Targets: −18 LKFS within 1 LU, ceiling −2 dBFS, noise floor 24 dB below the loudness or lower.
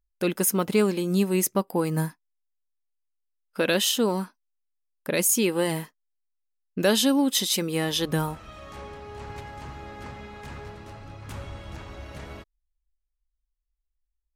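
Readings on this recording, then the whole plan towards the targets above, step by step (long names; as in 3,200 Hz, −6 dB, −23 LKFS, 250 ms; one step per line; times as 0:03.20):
integrated loudness −24.0 LKFS; sample peak −9.5 dBFS; target loudness −18.0 LKFS
→ level +6 dB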